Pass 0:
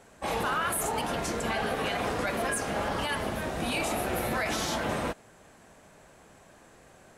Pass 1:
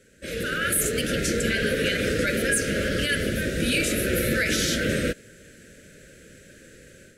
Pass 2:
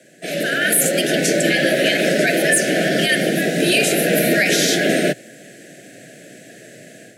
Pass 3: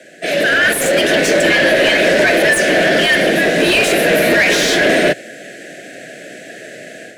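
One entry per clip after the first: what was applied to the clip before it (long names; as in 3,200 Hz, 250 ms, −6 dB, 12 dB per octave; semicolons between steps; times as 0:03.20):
elliptic band-stop filter 540–1,500 Hz, stop band 60 dB; automatic gain control gain up to 8.5 dB
frequency shifter +110 Hz; level +7.5 dB
mid-hump overdrive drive 20 dB, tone 2,300 Hz, clips at −1 dBFS; level −1 dB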